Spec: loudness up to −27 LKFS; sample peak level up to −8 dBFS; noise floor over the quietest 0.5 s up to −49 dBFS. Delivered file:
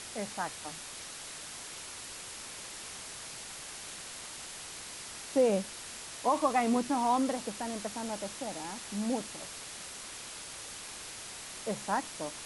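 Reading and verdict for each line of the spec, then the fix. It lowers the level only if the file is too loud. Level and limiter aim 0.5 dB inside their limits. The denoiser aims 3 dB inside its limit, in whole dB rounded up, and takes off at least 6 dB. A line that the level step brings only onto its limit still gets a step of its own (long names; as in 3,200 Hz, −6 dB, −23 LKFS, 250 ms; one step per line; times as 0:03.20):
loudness −35.5 LKFS: in spec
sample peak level −16.0 dBFS: in spec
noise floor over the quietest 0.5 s −44 dBFS: out of spec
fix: broadband denoise 8 dB, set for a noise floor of −44 dBFS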